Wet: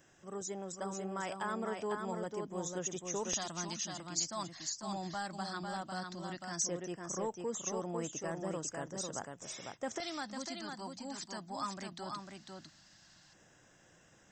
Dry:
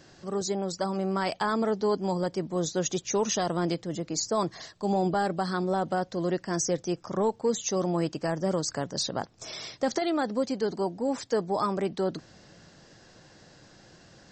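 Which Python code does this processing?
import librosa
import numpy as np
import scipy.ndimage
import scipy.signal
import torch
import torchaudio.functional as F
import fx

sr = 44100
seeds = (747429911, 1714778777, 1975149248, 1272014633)

p1 = F.preemphasis(torch.from_numpy(x), 0.9).numpy()
p2 = fx.notch(p1, sr, hz=2300.0, q=27.0)
p3 = p2 + fx.echo_single(p2, sr, ms=499, db=-4.5, dry=0)
p4 = fx.filter_lfo_notch(p3, sr, shape='square', hz=0.15, low_hz=450.0, high_hz=4400.0, q=1.1)
p5 = fx.high_shelf(p4, sr, hz=3400.0, db=-11.0)
y = p5 * librosa.db_to_amplitude(6.5)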